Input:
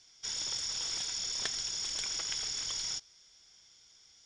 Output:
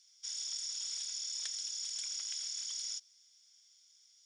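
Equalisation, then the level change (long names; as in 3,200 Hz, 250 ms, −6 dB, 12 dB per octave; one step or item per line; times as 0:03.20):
first difference
−1.5 dB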